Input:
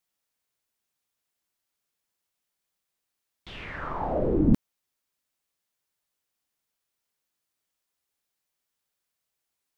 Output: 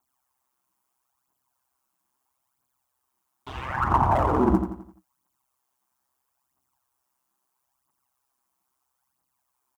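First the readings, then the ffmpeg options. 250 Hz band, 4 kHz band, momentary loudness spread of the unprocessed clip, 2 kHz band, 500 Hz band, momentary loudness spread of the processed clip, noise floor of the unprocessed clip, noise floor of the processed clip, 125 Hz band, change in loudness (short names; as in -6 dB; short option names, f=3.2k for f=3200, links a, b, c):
+0.5 dB, +1.0 dB, 17 LU, +6.5 dB, +2.5 dB, 18 LU, -84 dBFS, -79 dBFS, +3.0 dB, +3.5 dB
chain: -filter_complex "[0:a]asplit=2[a][b];[b]aeval=exprs='sgn(val(0))*max(abs(val(0))-0.01,0)':c=same,volume=-10dB[c];[a][c]amix=inputs=2:normalize=0,aphaser=in_gain=1:out_gain=1:delay=4.2:decay=0.71:speed=0.76:type=triangular,equalizer=f=820:t=o:w=0.89:g=4,acompressor=threshold=-14dB:ratio=6,asoftclip=type=hard:threshold=-21.5dB,equalizer=f=125:t=o:w=1:g=-5,equalizer=f=250:t=o:w=1:g=7,equalizer=f=500:t=o:w=1:g=-11,equalizer=f=1k:t=o:w=1:g=12,equalizer=f=2k:t=o:w=1:g=-7,equalizer=f=4k:t=o:w=1:g=-8,aeval=exprs='val(0)*sin(2*PI*65*n/s)':c=same,highpass=53,aecho=1:1:86|172|258|344|430:0.398|0.171|0.0736|0.0317|0.0136,volume=5dB"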